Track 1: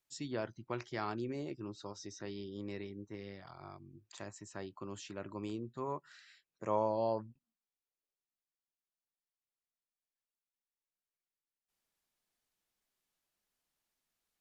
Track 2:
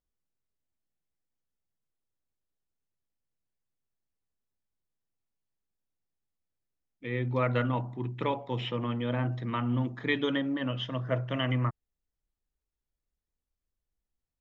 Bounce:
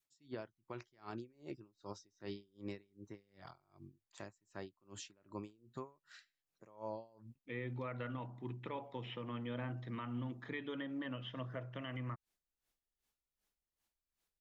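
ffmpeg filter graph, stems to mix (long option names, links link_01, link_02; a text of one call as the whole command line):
ffmpeg -i stem1.wav -i stem2.wav -filter_complex "[0:a]aeval=exprs='val(0)*pow(10,-32*(0.5-0.5*cos(2*PI*2.6*n/s))/20)':channel_layout=same,volume=1.5dB[link_01];[1:a]acrossover=split=3100[link_02][link_03];[link_03]acompressor=threshold=-55dB:ratio=4:attack=1:release=60[link_04];[link_02][link_04]amix=inputs=2:normalize=0,lowshelf=frequency=210:gain=-6,adelay=450,volume=-5.5dB[link_05];[link_01][link_05]amix=inputs=2:normalize=0,adynamicequalizer=threshold=0.00282:dfrequency=720:dqfactor=0.75:tfrequency=720:tqfactor=0.75:attack=5:release=100:ratio=0.375:range=2:mode=cutabove:tftype=bell,alimiter=level_in=8.5dB:limit=-24dB:level=0:latency=1:release=260,volume=-8.5dB" out.wav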